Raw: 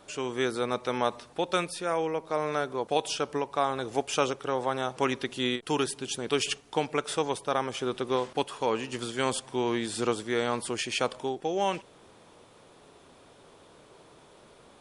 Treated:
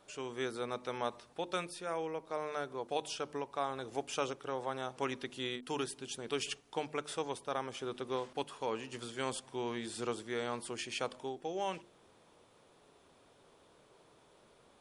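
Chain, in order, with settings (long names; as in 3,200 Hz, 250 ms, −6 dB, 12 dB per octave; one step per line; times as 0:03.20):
mains-hum notches 50/100/150/200/250/300/350 Hz
level −9 dB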